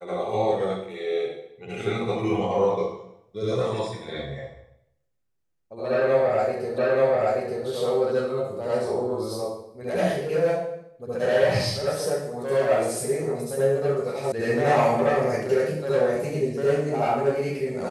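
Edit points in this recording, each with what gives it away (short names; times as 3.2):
6.78 repeat of the last 0.88 s
14.32 sound cut off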